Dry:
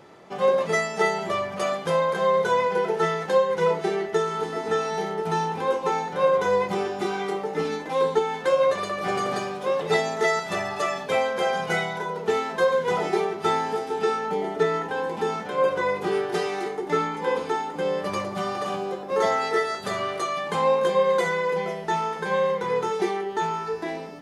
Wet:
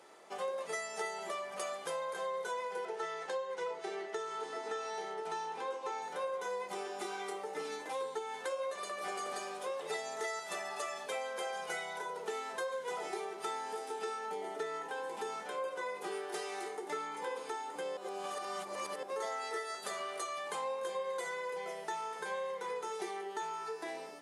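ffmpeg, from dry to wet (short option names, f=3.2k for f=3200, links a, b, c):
-filter_complex "[0:a]asettb=1/sr,asplit=3[a][b][c];[a]atrim=end=2.854[d];[b]atrim=start=2.85:end=6.02,asetpts=PTS-STARTPTS,afade=t=in:d=0.004:c=qsin,afade=t=out:st=3.166:d=0.004:c=qsin,highpass=180,lowpass=6.6k[e];[c]atrim=start=6.016[f];[d][e]acrossfade=d=0.004:c1=hsin:c2=qsin[g];[g][f]acrossfade=d=0.004:c1=qsin:c2=hsin,asplit=3[h][i][j];[h]atrim=end=17.972[k];[i]atrim=start=17.968:end=19.032,asetpts=PTS-STARTPTS,areverse[l];[j]atrim=start=19.028[m];[k][l]acrossfade=d=0.004:c1=hsin:c2=hsin[n];[n][m]acrossfade=d=0.004:c1=hsin:c2=hsin,highpass=420,equalizer=f=9.2k:w=1.1:g=12,acompressor=threshold=-31dB:ratio=3,volume=-7dB"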